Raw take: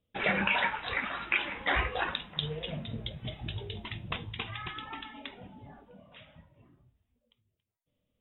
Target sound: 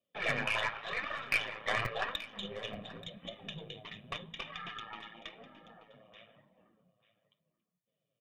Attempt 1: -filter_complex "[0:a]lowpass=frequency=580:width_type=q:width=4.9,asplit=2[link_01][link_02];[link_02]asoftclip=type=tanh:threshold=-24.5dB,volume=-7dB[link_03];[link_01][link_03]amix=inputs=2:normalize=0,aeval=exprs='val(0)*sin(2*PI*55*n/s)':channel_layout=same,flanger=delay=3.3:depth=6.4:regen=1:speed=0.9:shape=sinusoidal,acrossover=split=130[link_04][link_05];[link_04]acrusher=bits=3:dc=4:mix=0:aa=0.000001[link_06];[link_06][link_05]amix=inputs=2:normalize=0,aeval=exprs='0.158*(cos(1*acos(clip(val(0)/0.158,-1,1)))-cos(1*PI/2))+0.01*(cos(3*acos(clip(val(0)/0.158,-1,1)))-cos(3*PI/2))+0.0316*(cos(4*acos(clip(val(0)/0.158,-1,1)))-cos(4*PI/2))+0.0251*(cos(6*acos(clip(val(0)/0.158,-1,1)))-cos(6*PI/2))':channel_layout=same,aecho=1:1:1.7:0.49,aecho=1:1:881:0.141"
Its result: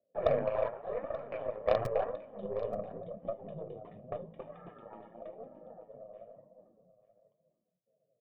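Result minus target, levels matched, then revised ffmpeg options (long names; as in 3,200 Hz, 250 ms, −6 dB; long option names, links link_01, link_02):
500 Hz band +10.0 dB
-filter_complex "[0:a]asplit=2[link_01][link_02];[link_02]asoftclip=type=tanh:threshold=-24.5dB,volume=-7dB[link_03];[link_01][link_03]amix=inputs=2:normalize=0,aeval=exprs='val(0)*sin(2*PI*55*n/s)':channel_layout=same,flanger=delay=3.3:depth=6.4:regen=1:speed=0.9:shape=sinusoidal,acrossover=split=130[link_04][link_05];[link_04]acrusher=bits=3:dc=4:mix=0:aa=0.000001[link_06];[link_06][link_05]amix=inputs=2:normalize=0,aeval=exprs='0.158*(cos(1*acos(clip(val(0)/0.158,-1,1)))-cos(1*PI/2))+0.01*(cos(3*acos(clip(val(0)/0.158,-1,1)))-cos(3*PI/2))+0.0316*(cos(4*acos(clip(val(0)/0.158,-1,1)))-cos(4*PI/2))+0.0251*(cos(6*acos(clip(val(0)/0.158,-1,1)))-cos(6*PI/2))':channel_layout=same,aecho=1:1:1.7:0.49,aecho=1:1:881:0.141"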